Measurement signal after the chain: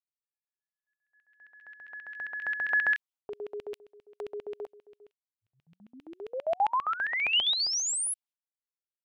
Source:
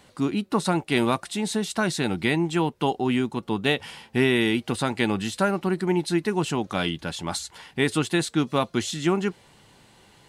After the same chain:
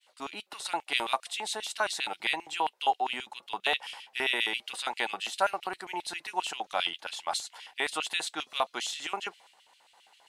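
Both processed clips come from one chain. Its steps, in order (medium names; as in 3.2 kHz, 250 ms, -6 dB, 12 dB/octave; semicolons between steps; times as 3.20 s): LFO high-pass square 7.5 Hz 760–2800 Hz; expander -50 dBFS; trim -5 dB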